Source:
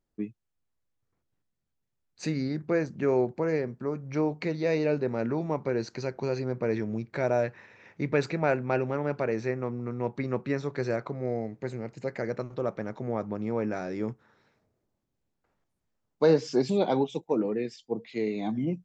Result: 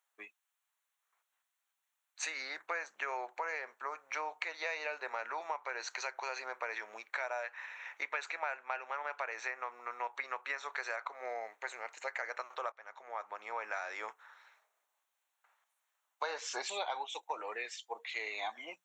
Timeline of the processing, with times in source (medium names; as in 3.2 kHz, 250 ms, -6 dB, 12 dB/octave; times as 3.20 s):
12.72–13.86 s: fade in, from -18.5 dB
whole clip: high-pass 870 Hz 24 dB/octave; peaking EQ 4.9 kHz -15 dB 0.25 oct; compression 6:1, threshold -43 dBFS; trim +8.5 dB